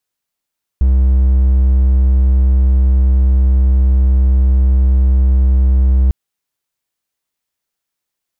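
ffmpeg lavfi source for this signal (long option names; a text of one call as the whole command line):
ffmpeg -f lavfi -i "aevalsrc='0.531*(1-4*abs(mod(64.9*t+0.25,1)-0.5))':duration=5.3:sample_rate=44100" out.wav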